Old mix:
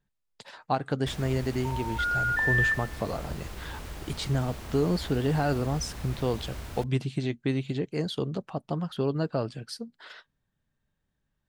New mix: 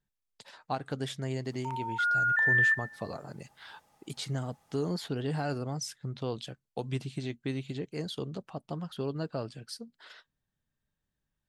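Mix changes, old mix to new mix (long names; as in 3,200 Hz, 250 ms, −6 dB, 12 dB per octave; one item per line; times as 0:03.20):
speech −6.5 dB
first sound: muted
master: add high-shelf EQ 4,000 Hz +6 dB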